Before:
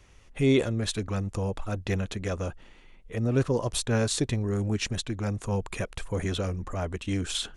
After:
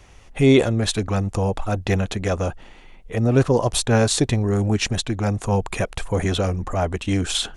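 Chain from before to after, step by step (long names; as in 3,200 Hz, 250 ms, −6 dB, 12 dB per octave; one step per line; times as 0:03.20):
parametric band 760 Hz +6 dB 0.51 octaves
level +7.5 dB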